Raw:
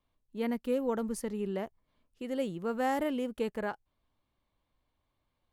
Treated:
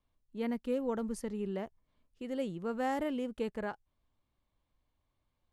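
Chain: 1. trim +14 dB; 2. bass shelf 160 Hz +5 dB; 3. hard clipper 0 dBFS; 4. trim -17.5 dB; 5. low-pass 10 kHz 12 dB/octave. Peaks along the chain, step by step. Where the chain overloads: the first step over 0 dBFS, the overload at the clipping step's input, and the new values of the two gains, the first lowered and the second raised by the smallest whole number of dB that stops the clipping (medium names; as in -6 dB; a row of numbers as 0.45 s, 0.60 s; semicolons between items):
-4.0 dBFS, -3.5 dBFS, -3.5 dBFS, -21.0 dBFS, -21.0 dBFS; nothing clips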